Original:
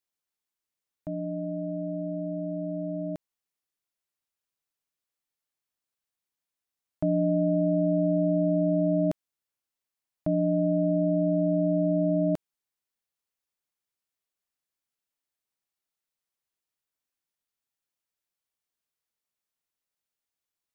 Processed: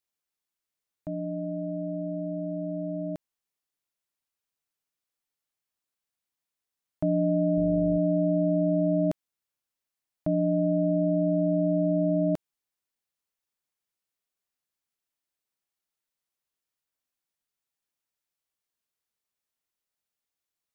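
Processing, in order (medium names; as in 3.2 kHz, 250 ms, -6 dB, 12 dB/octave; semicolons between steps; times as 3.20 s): 7.56–7.97 s: mains buzz 50 Hz, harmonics 13, -40 dBFS -5 dB/octave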